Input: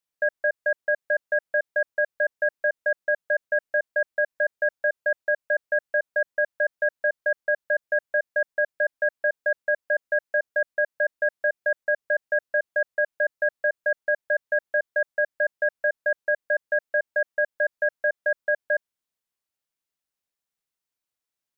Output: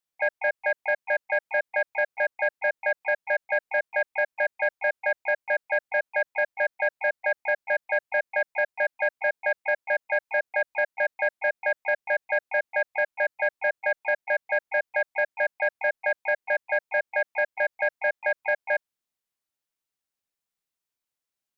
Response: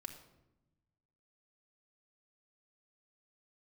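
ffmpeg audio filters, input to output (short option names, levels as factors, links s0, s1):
-filter_complex "[0:a]asplit=4[s0][s1][s2][s3];[s1]asetrate=55563,aresample=44100,atempo=0.793701,volume=0.141[s4];[s2]asetrate=58866,aresample=44100,atempo=0.749154,volume=0.251[s5];[s3]asetrate=66075,aresample=44100,atempo=0.66742,volume=0.178[s6];[s0][s4][s5][s6]amix=inputs=4:normalize=0,acontrast=72,volume=0.398"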